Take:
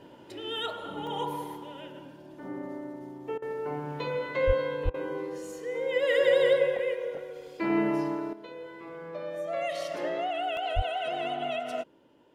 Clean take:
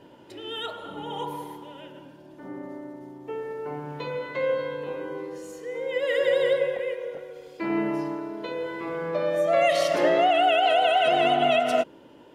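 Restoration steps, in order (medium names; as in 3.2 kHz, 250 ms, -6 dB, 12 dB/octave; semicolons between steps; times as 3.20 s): 4.46–4.58 s: high-pass 140 Hz 24 dB/octave; 4.84–4.96 s: high-pass 140 Hz 24 dB/octave; 10.75–10.87 s: high-pass 140 Hz 24 dB/octave; interpolate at 1.07/1.54/10.57 s, 1.2 ms; interpolate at 3.38/4.90 s, 40 ms; trim 0 dB, from 8.33 s +11 dB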